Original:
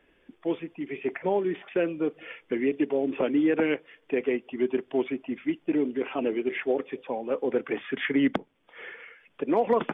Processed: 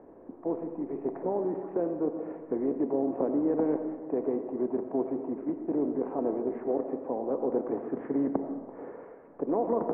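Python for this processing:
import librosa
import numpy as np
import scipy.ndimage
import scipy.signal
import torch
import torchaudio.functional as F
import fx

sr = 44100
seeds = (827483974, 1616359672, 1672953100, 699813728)

y = fx.bin_compress(x, sr, power=0.6)
y = scipy.signal.sosfilt(scipy.signal.butter(4, 1000.0, 'lowpass', fs=sr, output='sos'), y)
y = fx.rev_freeverb(y, sr, rt60_s=1.6, hf_ratio=0.5, predelay_ms=45, drr_db=7.0)
y = y * 10.0 ** (-6.5 / 20.0)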